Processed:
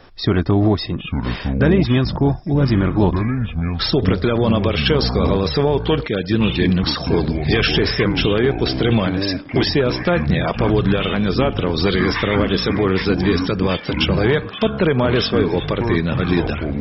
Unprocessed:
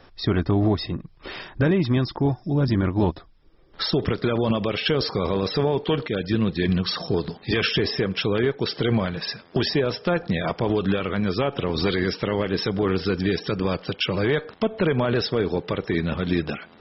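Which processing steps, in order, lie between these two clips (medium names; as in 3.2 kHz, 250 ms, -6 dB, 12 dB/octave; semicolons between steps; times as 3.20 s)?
ever faster or slower copies 717 ms, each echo -7 st, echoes 3, each echo -6 dB; trim +5 dB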